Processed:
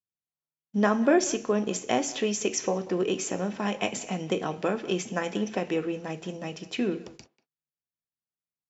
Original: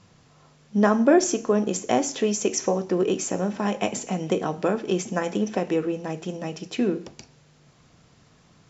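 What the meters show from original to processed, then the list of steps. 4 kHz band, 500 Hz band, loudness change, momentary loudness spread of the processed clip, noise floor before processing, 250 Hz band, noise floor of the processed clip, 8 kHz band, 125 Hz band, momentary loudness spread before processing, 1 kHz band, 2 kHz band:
−0.5 dB, −4.0 dB, −4.0 dB, 11 LU, −57 dBFS, −4.5 dB, below −85 dBFS, can't be measured, −4.5 dB, 12 LU, −3.5 dB, −0.5 dB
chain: noise gate −45 dBFS, range −46 dB
dynamic equaliser 2,700 Hz, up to +6 dB, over −45 dBFS, Q 0.9
far-end echo of a speakerphone 190 ms, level −18 dB
level −4.5 dB

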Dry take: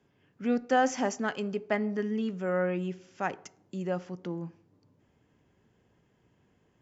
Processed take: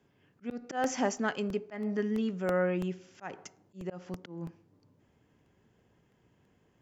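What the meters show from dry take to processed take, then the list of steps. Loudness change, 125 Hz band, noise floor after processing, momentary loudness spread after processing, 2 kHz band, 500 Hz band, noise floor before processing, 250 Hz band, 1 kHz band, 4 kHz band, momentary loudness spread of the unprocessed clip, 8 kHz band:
−3.0 dB, −1.5 dB, −69 dBFS, 15 LU, −3.5 dB, −2.5 dB, −69 dBFS, −2.5 dB, −5.5 dB, −2.0 dB, 12 LU, can't be measured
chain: volume swells 196 ms
regular buffer underruns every 0.33 s, samples 64, repeat, from 0:00.51

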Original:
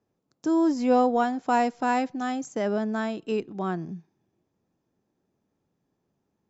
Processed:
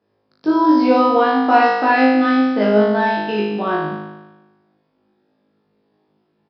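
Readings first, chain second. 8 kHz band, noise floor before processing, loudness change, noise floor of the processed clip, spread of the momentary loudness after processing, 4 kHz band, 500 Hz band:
can't be measured, −78 dBFS, +10.5 dB, −67 dBFS, 8 LU, +13.0 dB, +10.0 dB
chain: high-pass filter 240 Hz 6 dB per octave
flutter between parallel walls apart 3.3 metres, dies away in 1.1 s
downsampling to 11,025 Hz
level +7 dB

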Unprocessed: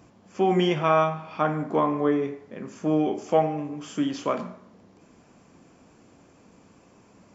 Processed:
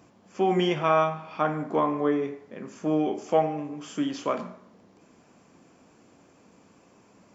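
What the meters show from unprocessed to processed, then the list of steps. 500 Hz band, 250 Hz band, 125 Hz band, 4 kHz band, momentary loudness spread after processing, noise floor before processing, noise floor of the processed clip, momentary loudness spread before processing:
−1.5 dB, −2.0 dB, −3.5 dB, −1.0 dB, 12 LU, −57 dBFS, −59 dBFS, 12 LU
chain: low-shelf EQ 98 Hz −9.5 dB
level −1 dB

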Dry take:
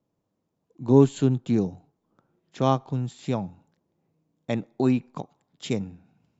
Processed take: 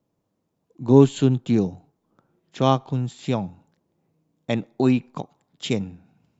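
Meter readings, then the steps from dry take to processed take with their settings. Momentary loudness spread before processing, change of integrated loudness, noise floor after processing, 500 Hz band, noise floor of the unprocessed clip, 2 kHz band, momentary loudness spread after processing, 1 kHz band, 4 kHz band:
21 LU, +3.0 dB, −75 dBFS, +3.0 dB, −78 dBFS, +5.0 dB, 21 LU, +3.0 dB, +7.0 dB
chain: dynamic equaliser 3,100 Hz, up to +5 dB, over −52 dBFS, Q 1.8
level +3 dB

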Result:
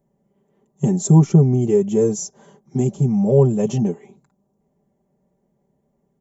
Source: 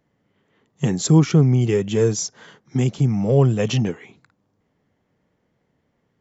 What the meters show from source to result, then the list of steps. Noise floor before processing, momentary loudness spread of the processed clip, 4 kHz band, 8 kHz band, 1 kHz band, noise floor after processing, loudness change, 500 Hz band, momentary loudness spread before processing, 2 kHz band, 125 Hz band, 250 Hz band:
−70 dBFS, 13 LU, below −10 dB, can't be measured, 0.0 dB, −69 dBFS, +1.5 dB, +3.0 dB, 11 LU, below −10 dB, +1.0 dB, +2.5 dB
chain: flat-topped bell 2,500 Hz −15.5 dB 2.4 octaves
comb filter 5.1 ms, depth 78%

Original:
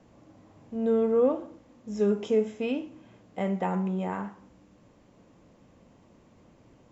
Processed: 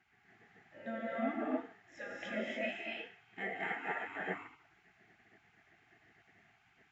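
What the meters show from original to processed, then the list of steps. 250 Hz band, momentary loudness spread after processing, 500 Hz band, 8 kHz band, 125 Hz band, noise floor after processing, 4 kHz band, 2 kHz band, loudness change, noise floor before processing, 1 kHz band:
−13.0 dB, 12 LU, −15.5 dB, can't be measured, −20.0 dB, −71 dBFS, −1.5 dB, +6.0 dB, −12.0 dB, −59 dBFS, −6.0 dB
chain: pair of resonant band-passes 1,000 Hz, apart 1.7 octaves
reverb whose tail is shaped and stops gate 310 ms rising, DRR −3.5 dB
gate on every frequency bin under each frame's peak −20 dB weak
level +11.5 dB

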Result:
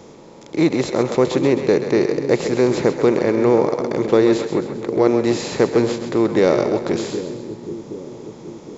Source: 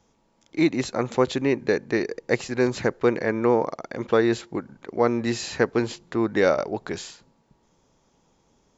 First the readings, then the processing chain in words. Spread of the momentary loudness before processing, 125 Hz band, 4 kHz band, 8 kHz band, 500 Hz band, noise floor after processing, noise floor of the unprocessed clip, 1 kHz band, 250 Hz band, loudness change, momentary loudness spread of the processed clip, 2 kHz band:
13 LU, +6.5 dB, +4.5 dB, can't be measured, +7.0 dB, −41 dBFS, −66 dBFS, +3.5 dB, +7.0 dB, +6.0 dB, 15 LU, +0.5 dB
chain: compressor on every frequency bin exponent 0.6
graphic EQ with 15 bands 160 Hz +5 dB, 400 Hz +4 dB, 1,600 Hz −7 dB
echo with a time of its own for lows and highs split 410 Hz, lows 771 ms, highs 132 ms, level −8.5 dB

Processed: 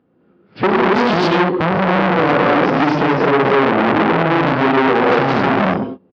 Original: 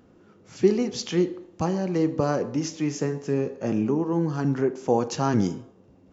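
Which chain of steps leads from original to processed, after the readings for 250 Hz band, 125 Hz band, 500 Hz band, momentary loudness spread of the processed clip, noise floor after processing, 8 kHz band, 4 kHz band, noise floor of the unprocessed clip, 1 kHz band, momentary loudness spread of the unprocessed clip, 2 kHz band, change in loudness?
+8.5 dB, +7.0 dB, +10.5 dB, 3 LU, −56 dBFS, can't be measured, +13.0 dB, −56 dBFS, +18.0 dB, 5 LU, +23.0 dB, +11.0 dB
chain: loose part that buzzes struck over −24 dBFS, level −27 dBFS
noise gate −43 dBFS, range −26 dB
high-pass filter 120 Hz 12 dB per octave
downward compressor 4 to 1, threshold −27 dBFS, peak gain reduction 12 dB
high-frequency loss of the air 310 metres
reverb whose tail is shaped and stops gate 280 ms rising, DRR −4.5 dB
downsampling to 11,025 Hz
boost into a limiter +22 dB
saturating transformer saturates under 1,200 Hz

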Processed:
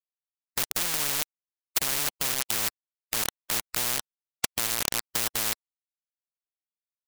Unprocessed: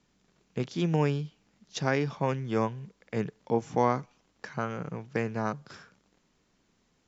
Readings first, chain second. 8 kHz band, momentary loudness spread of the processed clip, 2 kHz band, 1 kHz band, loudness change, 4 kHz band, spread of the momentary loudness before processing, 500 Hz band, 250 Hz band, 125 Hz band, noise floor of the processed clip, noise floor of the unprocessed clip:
can't be measured, 6 LU, +4.5 dB, −5.0 dB, +4.0 dB, +15.0 dB, 14 LU, −11.5 dB, −13.0 dB, −14.5 dB, below −85 dBFS, −71 dBFS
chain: bit reduction 5 bits
every bin compressed towards the loudest bin 10 to 1
level +8 dB

